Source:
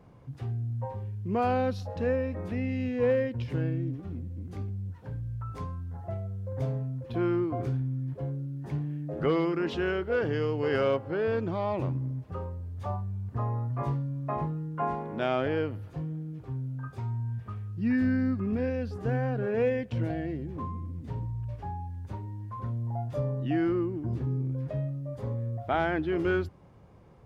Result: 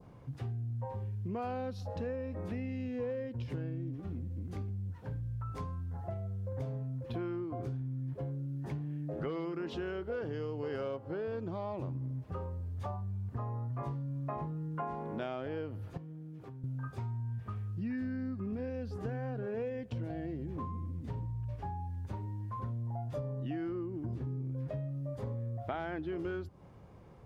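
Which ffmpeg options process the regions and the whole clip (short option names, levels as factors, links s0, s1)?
-filter_complex "[0:a]asettb=1/sr,asplit=3[s0][s1][s2];[s0]atrim=end=15.974[s3];[s1]atrim=start=15.97:end=16.64,asetpts=PTS-STARTPTS,afade=t=in:d=0.004:c=qsin,afade=t=out:st=0.666:d=0.004:c=qsin,highpass=140,acompressor=threshold=0.00708:ratio=12:attack=3.2:release=140:knee=1:detection=peak[s4];[s2]atrim=start=16.636[s5];[s3][s4]acrossfade=d=0.004:c1=hsin:c2=qsin[s6];[s6][s5]acrossfade=d=0.004:c1=qsin:c2=hsin,adynamicequalizer=threshold=0.00316:dfrequency=2100:dqfactor=1.2:tfrequency=2100:tqfactor=1.2:attack=5:release=100:ratio=0.375:range=3:mode=cutabove:tftype=bell,acompressor=threshold=0.0178:ratio=6"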